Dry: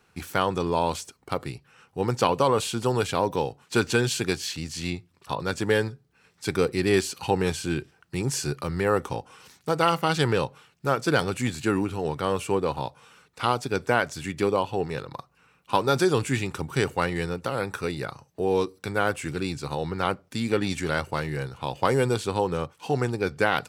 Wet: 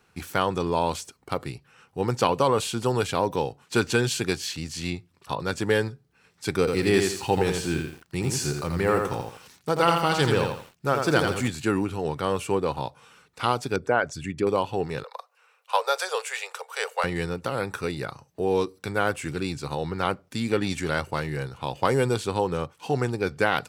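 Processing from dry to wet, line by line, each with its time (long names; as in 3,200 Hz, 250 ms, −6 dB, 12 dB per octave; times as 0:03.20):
0:06.59–0:11.48: feedback echo at a low word length 84 ms, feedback 35%, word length 8 bits, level −4.5 dB
0:13.76–0:14.47: spectral envelope exaggerated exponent 1.5
0:15.04–0:17.04: Butterworth high-pass 450 Hz 96 dB per octave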